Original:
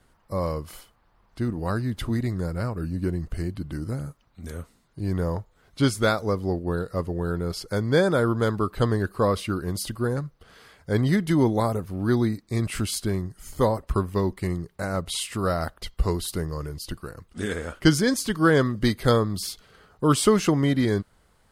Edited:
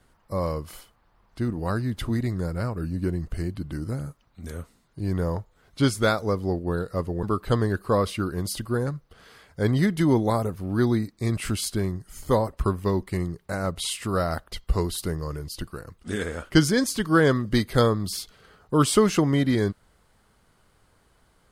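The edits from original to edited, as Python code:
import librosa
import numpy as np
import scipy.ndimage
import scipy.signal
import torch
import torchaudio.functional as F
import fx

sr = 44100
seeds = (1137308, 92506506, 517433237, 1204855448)

y = fx.edit(x, sr, fx.cut(start_s=7.23, length_s=1.3), tone=tone)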